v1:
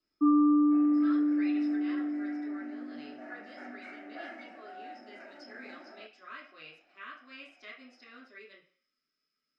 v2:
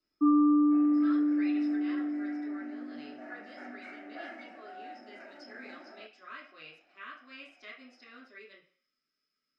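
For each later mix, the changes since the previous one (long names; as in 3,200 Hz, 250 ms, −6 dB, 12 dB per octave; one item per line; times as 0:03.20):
nothing changed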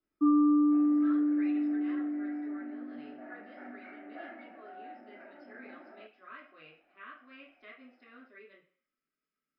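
master: add high-frequency loss of the air 420 metres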